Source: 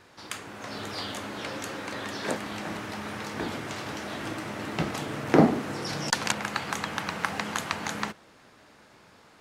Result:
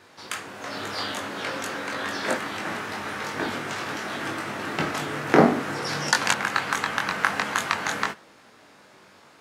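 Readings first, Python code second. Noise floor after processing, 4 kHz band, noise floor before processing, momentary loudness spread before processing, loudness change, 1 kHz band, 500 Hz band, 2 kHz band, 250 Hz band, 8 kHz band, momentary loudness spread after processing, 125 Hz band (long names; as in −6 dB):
−53 dBFS, +4.0 dB, −56 dBFS, 11 LU, +4.0 dB, +5.5 dB, +3.5 dB, +7.5 dB, +1.0 dB, +3.5 dB, 10 LU, −0.5 dB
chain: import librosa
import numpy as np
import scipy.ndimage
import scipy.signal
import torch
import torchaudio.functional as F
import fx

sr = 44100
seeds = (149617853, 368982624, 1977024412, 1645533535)

y = fx.highpass(x, sr, hz=170.0, slope=6)
y = fx.dynamic_eq(y, sr, hz=1500.0, q=1.3, threshold_db=-43.0, ratio=4.0, max_db=5)
y = fx.doubler(y, sr, ms=21.0, db=-4.0)
y = y * 10.0 ** (2.0 / 20.0)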